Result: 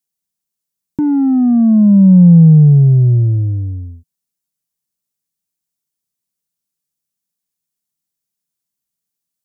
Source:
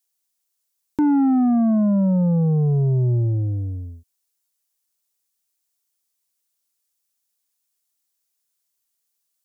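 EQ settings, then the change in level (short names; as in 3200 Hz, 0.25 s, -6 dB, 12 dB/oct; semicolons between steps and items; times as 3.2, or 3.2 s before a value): bell 170 Hz +12.5 dB 1.1 oct; low shelf 300 Hz +8 dB; -5.0 dB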